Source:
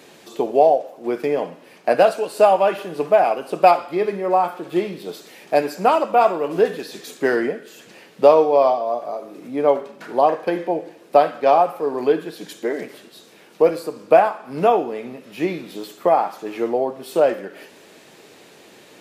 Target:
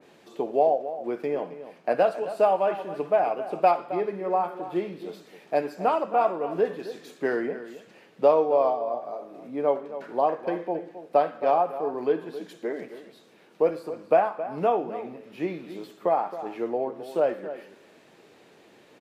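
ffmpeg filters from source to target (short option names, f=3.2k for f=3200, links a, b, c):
-filter_complex "[0:a]highshelf=f=3.9k:g=-10,asplit=2[a][b];[b]adelay=268.2,volume=-13dB,highshelf=f=4k:g=-6.04[c];[a][c]amix=inputs=2:normalize=0,adynamicequalizer=threshold=0.0316:dfrequency=2100:dqfactor=0.7:tfrequency=2100:tqfactor=0.7:attack=5:release=100:ratio=0.375:range=2:mode=cutabove:tftype=highshelf,volume=-7dB"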